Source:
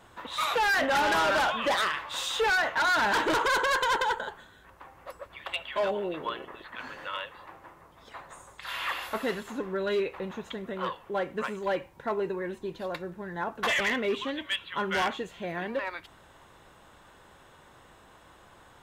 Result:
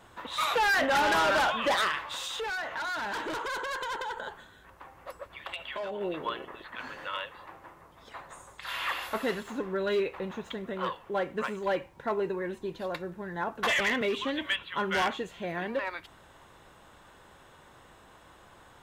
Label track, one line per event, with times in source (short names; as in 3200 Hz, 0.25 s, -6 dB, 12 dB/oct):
2.000000	6.010000	compressor 12:1, threshold -32 dBFS
9.420000	12.530000	median filter over 3 samples
14.010000	14.630000	three-band squash depth 100%